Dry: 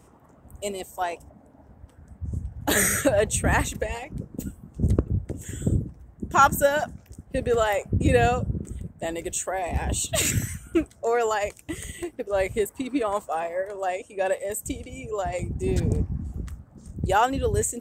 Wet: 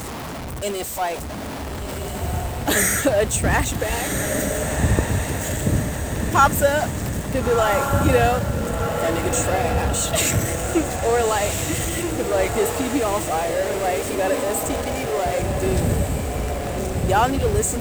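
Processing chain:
converter with a step at zero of −26.5 dBFS
feedback delay with all-pass diffusion 1,395 ms, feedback 51%, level −5 dB
level +1 dB

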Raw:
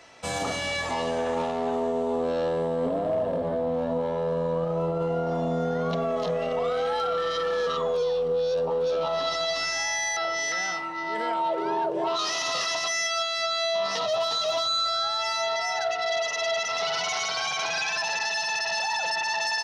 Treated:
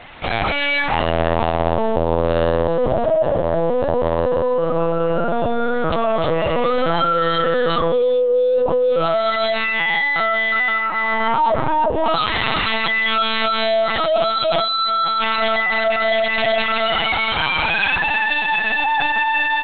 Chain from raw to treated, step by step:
low-shelf EQ 390 Hz −9.5 dB
in parallel at +0.5 dB: brickwall limiter −26 dBFS, peak gain reduction 8.5 dB
on the sum: linear-prediction vocoder at 8 kHz pitch kept
level +7.5 dB

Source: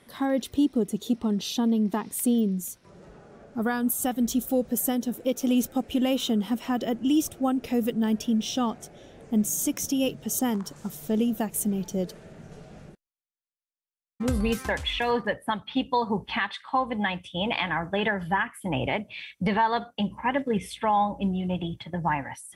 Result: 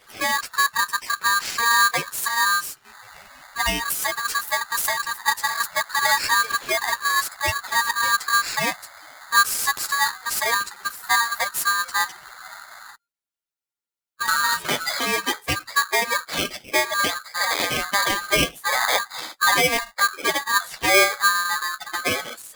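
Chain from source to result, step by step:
spectral magnitudes quantised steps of 30 dB
multi-voice chorus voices 4, 0.59 Hz, delay 10 ms, depth 1.1 ms
ring modulator with a square carrier 1,400 Hz
level +7 dB

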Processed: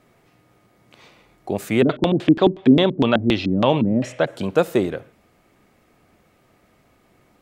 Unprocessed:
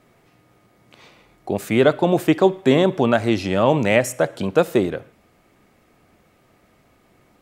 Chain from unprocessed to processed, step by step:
0:01.81–0:04.26: auto-filter low-pass square 7.4 Hz → 2 Hz 260–3,500 Hz
level −1 dB

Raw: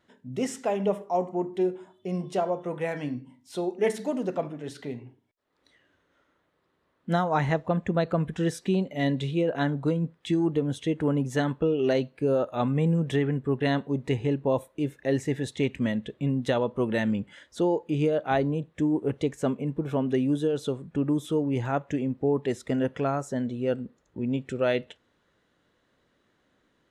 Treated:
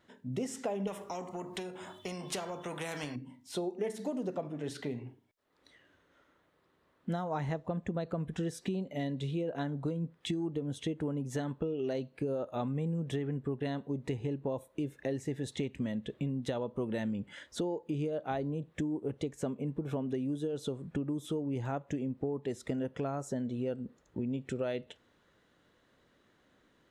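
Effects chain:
dynamic equaliser 1,900 Hz, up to −5 dB, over −43 dBFS, Q 0.71
downward compressor 6 to 1, threshold −33 dBFS, peak gain reduction 12.5 dB
0:00.87–0:03.16: every bin compressed towards the loudest bin 2 to 1
level +1 dB

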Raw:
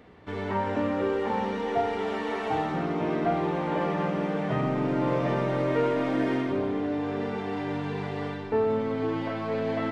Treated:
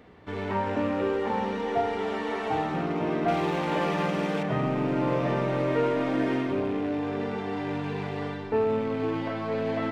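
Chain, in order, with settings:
loose part that buzzes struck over −32 dBFS, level −37 dBFS
0:03.28–0:04.43: high-shelf EQ 2,700 Hz +11.5 dB

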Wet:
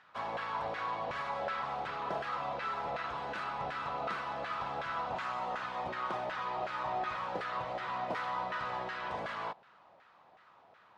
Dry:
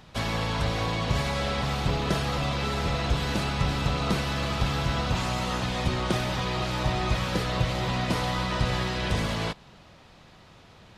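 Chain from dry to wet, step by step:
auto-filter band-pass saw down 2.7 Hz 670–1,600 Hz

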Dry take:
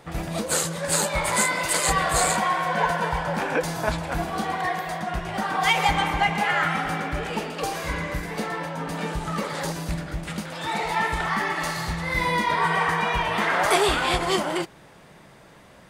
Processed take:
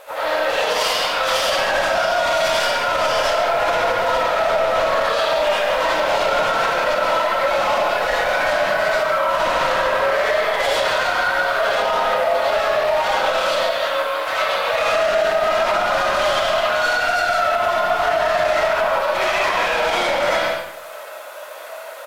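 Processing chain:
Chebyshev band-pass filter 760–5,800 Hz, order 3
reverb reduction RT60 0.54 s
compressor whose output falls as the input rises −29 dBFS, ratio −0.5
phase-vocoder pitch shift with formants kept +4.5 semitones
background noise blue −64 dBFS
gain into a clipping stage and back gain 32.5 dB
change of speed 0.72×
slap from a distant wall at 24 metres, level −7 dB
comb and all-pass reverb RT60 0.86 s, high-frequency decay 0.8×, pre-delay 40 ms, DRR −8 dB
boost into a limiter +18 dB
level −8.5 dB

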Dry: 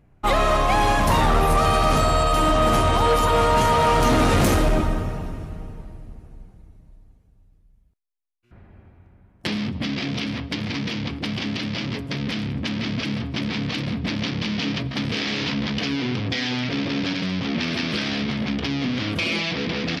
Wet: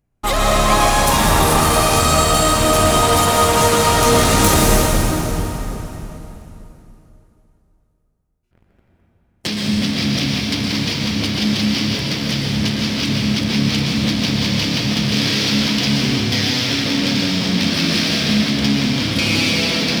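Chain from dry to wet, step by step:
bass and treble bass +1 dB, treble +13 dB
leveller curve on the samples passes 3
dense smooth reverb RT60 2.9 s, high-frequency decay 0.85×, pre-delay 105 ms, DRR −2 dB
level −9.5 dB

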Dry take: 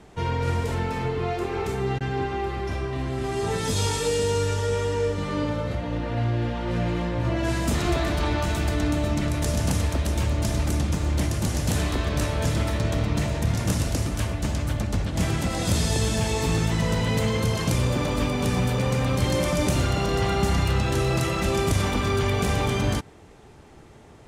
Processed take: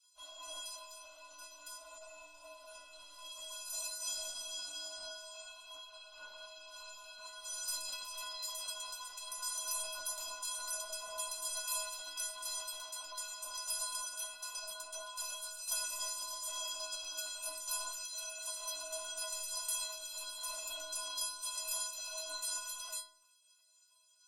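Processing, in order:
gate on every frequency bin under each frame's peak −25 dB weak
phaser with its sweep stopped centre 800 Hz, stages 4
stiff-string resonator 300 Hz, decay 0.81 s, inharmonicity 0.03
level +17 dB

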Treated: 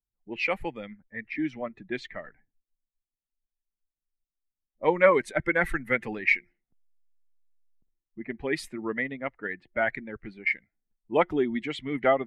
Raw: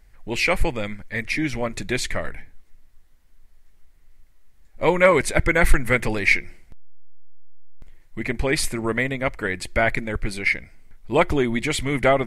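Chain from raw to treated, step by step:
spectral dynamics exaggerated over time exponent 1.5
tape wow and flutter 21 cents
low-pass that shuts in the quiet parts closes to 490 Hz, open at −21 dBFS
three-way crossover with the lows and the highs turned down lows −18 dB, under 170 Hz, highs −15 dB, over 3,200 Hz
level −2 dB

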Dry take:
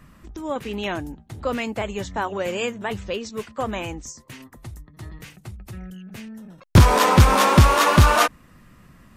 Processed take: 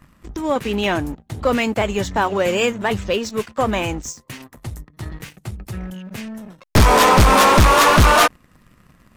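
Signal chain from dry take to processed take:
wavefolder on the positive side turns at −12 dBFS
leveller curve on the samples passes 2

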